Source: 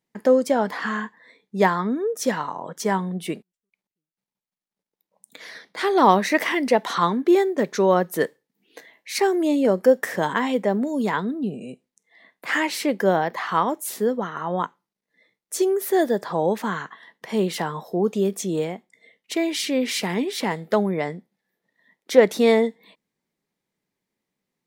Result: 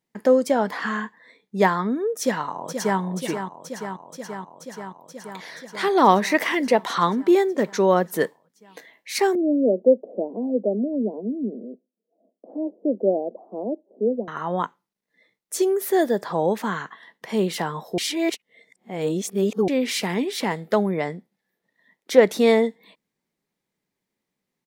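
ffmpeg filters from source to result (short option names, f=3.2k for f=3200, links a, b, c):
-filter_complex "[0:a]asplit=2[a][b];[b]afade=t=in:st=2.2:d=0.01,afade=t=out:st=3:d=0.01,aecho=0:1:480|960|1440|1920|2400|2880|3360|3840|4320|4800|5280|5760:0.398107|0.318486|0.254789|0.203831|0.163065|0.130452|0.104361|0.0834891|0.0667913|0.053433|0.0427464|0.0341971[c];[a][c]amix=inputs=2:normalize=0,asettb=1/sr,asplit=3[d][e][f];[d]atrim=end=9.354[g];[e]atrim=start=9.35:end=14.28,asetpts=PTS-STARTPTS,afade=t=in:d=0.004:c=qsin,afade=t=out:st=4.926:d=0.004:c=qsin,asuperpass=centerf=370:order=12:qfactor=0.79[h];[f]atrim=start=14.276[i];[g][h]acrossfade=d=0.004:c1=hsin:c2=qsin[j];[j][i]acrossfade=d=0.004:c1=qsin:c2=hsin,asplit=3[k][l][m];[k]atrim=end=17.982[n];[l]atrim=start=17.978:end=19.682,asetpts=PTS-STARTPTS,areverse[o];[m]atrim=start=19.678[p];[n][o]acrossfade=d=0.004:c1=hsin:c2=hsin[q];[q][p]acrossfade=d=0.004:c1=hsin:c2=hsin"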